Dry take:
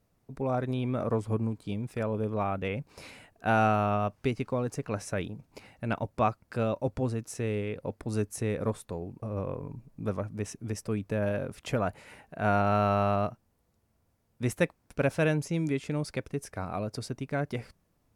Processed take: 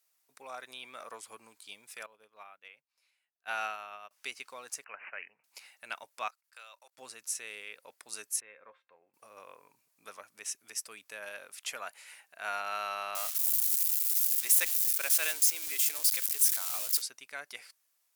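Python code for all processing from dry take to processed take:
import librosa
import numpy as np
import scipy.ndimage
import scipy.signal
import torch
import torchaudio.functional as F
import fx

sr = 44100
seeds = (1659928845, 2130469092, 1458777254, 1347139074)

y = fx.chain(x, sr, fx.peak_eq(hz=8600.0, db=-6.5, octaves=1.2),
    fx.upward_expand(threshold_db=-40.0, expansion=2.5), at=(2.06, 4.11))
y = fx.chain(y, sr, fx.low_shelf(hz=340.0, db=-8.0),
    fx.notch(hz=310.0, q=6.2),
    fx.resample_bad(factor=8, down='none', up='filtered'), at=(4.84, 5.44))
y = fx.chain(y, sr, fx.highpass(hz=840.0, slope=12),
    fx.level_steps(step_db=22), at=(6.28, 6.98))
y = fx.chain(y, sr, fx.lowpass(hz=2400.0, slope=24),
    fx.comb_fb(f0_hz=530.0, decay_s=0.15, harmonics='all', damping=0.0, mix_pct=70), at=(8.4, 9.14))
y = fx.chain(y, sr, fx.crossing_spikes(level_db=-27.0),
    fx.peak_eq(hz=160.0, db=-12.5, octaves=0.78), at=(13.15, 17.02))
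y = scipy.signal.sosfilt(scipy.signal.bessel(2, 2000.0, 'highpass', norm='mag', fs=sr, output='sos'), y)
y = fx.high_shelf(y, sr, hz=5100.0, db=9.0)
y = y * librosa.db_to_amplitude(1.0)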